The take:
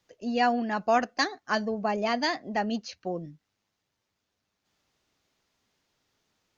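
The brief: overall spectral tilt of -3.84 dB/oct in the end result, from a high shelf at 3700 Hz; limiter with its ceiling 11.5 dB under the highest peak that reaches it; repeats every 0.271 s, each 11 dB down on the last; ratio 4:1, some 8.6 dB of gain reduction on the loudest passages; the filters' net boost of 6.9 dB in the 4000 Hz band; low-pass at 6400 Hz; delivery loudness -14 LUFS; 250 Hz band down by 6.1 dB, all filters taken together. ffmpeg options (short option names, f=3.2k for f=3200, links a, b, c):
-af "lowpass=6.4k,equalizer=f=250:t=o:g=-7,highshelf=f=3.7k:g=7,equalizer=f=4k:t=o:g=4.5,acompressor=threshold=-29dB:ratio=4,alimiter=level_in=2.5dB:limit=-24dB:level=0:latency=1,volume=-2.5dB,aecho=1:1:271|542|813:0.282|0.0789|0.0221,volume=23.5dB"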